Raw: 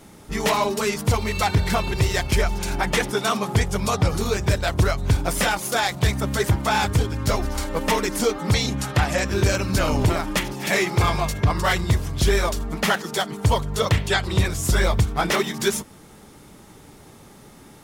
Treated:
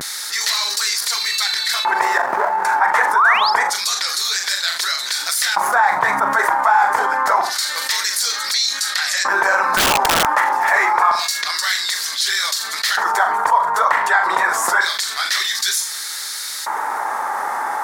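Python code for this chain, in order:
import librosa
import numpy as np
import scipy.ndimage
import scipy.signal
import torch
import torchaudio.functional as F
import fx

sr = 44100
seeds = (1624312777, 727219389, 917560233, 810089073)

p1 = fx.median_filter(x, sr, points=41, at=(2.17, 2.64))
p2 = fx.filter_lfo_highpass(p1, sr, shape='square', hz=0.27, low_hz=900.0, high_hz=4100.0, q=3.8)
p3 = fx.spec_paint(p2, sr, seeds[0], shape='rise', start_s=3.15, length_s=0.36, low_hz=860.0, high_hz=5400.0, level_db=-14.0)
p4 = fx.bass_treble(p3, sr, bass_db=14, treble_db=-4, at=(5.44, 6.4))
p5 = p4 + fx.room_flutter(p4, sr, wall_m=7.0, rt60_s=0.21, dry=0)
p6 = fx.vibrato(p5, sr, rate_hz=0.38, depth_cents=39.0)
p7 = scipy.signal.sosfilt(scipy.signal.butter(2, 170.0, 'highpass', fs=sr, output='sos'), p6)
p8 = fx.high_shelf_res(p7, sr, hz=2200.0, db=-8.5, q=3.0)
p9 = fx.overflow_wrap(p8, sr, gain_db=14.0, at=(9.65, 10.33))
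p10 = fx.env_flatten(p9, sr, amount_pct=70)
y = p10 * librosa.db_to_amplitude(-4.5)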